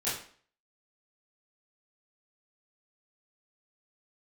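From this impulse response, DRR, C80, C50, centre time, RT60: -11.5 dB, 8.5 dB, 4.0 dB, 44 ms, 0.50 s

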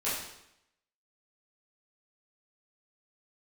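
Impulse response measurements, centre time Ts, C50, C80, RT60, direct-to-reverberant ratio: 60 ms, 1.5 dB, 5.0 dB, 0.80 s, -11.0 dB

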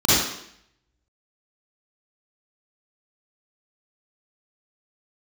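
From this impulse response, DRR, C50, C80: -11.5 dB, -6.5 dB, 0.5 dB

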